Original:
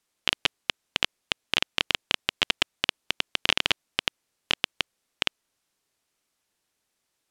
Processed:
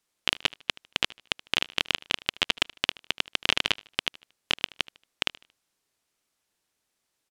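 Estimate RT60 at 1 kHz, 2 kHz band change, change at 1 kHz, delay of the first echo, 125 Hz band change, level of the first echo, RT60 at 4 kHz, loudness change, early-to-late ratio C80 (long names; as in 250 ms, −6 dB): no reverb audible, −1.0 dB, −1.0 dB, 76 ms, −1.0 dB, −21.5 dB, no reverb audible, −1.0 dB, no reverb audible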